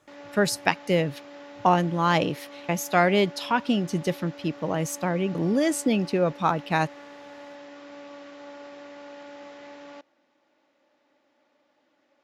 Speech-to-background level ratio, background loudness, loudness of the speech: 18.5 dB, -43.5 LUFS, -25.0 LUFS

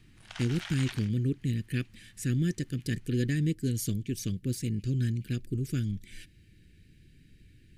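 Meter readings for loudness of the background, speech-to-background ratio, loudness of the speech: -43.0 LUFS, 11.5 dB, -31.5 LUFS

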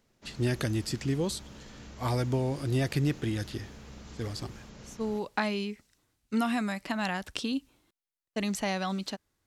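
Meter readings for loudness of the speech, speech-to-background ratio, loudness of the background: -32.0 LUFS, 16.5 dB, -48.5 LUFS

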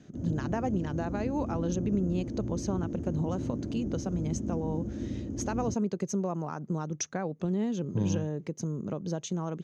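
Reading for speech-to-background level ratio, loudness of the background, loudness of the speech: 3.0 dB, -36.0 LUFS, -33.0 LUFS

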